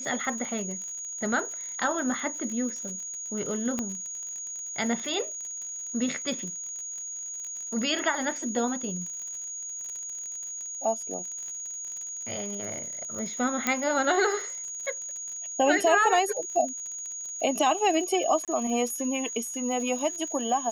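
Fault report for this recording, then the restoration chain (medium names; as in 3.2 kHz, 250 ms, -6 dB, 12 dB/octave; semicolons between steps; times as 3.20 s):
crackle 50 per s -35 dBFS
whine 6.7 kHz -34 dBFS
3.79 s: pop -16 dBFS
13.67 s: pop -9 dBFS
18.45–18.48 s: dropout 27 ms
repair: de-click; band-stop 6.7 kHz, Q 30; interpolate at 18.45 s, 27 ms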